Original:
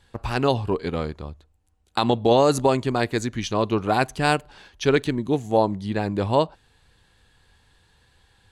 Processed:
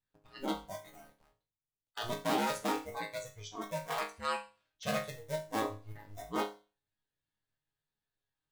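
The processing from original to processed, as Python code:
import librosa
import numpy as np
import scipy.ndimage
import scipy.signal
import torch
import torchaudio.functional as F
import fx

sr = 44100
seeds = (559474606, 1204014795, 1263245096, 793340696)

y = fx.cycle_switch(x, sr, every=2, mode='inverted')
y = fx.noise_reduce_blind(y, sr, reduce_db=19)
y = fx.resonator_bank(y, sr, root=44, chord='sus4', decay_s=0.34)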